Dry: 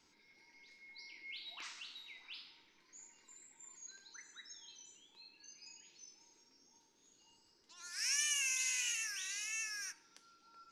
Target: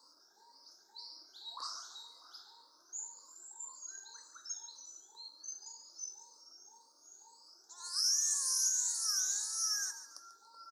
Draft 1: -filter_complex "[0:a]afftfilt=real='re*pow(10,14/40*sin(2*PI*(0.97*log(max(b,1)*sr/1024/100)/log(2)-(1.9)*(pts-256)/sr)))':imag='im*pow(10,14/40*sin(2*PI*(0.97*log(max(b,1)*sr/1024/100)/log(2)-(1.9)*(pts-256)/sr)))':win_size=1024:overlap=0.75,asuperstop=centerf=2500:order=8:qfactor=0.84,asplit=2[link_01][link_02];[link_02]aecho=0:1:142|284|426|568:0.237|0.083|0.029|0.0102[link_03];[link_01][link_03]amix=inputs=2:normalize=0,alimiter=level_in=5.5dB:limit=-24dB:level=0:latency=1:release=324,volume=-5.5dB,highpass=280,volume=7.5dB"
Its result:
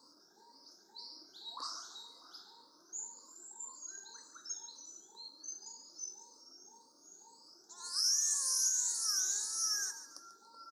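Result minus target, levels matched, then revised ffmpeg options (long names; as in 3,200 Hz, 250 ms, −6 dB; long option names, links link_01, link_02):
250 Hz band +10.5 dB
-filter_complex "[0:a]afftfilt=real='re*pow(10,14/40*sin(2*PI*(0.97*log(max(b,1)*sr/1024/100)/log(2)-(1.9)*(pts-256)/sr)))':imag='im*pow(10,14/40*sin(2*PI*(0.97*log(max(b,1)*sr/1024/100)/log(2)-(1.9)*(pts-256)/sr)))':win_size=1024:overlap=0.75,asuperstop=centerf=2500:order=8:qfactor=0.84,asplit=2[link_01][link_02];[link_02]aecho=0:1:142|284|426|568:0.237|0.083|0.029|0.0102[link_03];[link_01][link_03]amix=inputs=2:normalize=0,alimiter=level_in=5.5dB:limit=-24dB:level=0:latency=1:release=324,volume=-5.5dB,highpass=630,volume=7.5dB"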